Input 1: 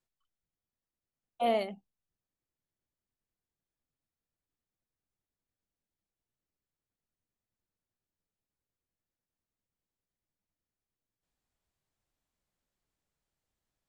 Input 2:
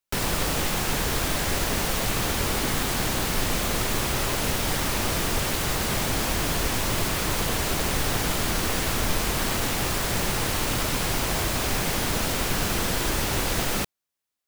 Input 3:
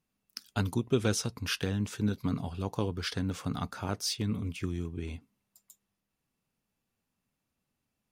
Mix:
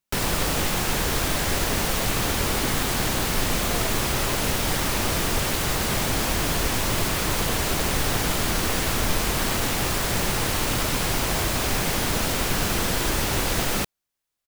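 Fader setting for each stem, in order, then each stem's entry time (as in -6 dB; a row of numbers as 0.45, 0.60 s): -10.5, +1.5, -12.5 dB; 2.30, 0.00, 0.00 s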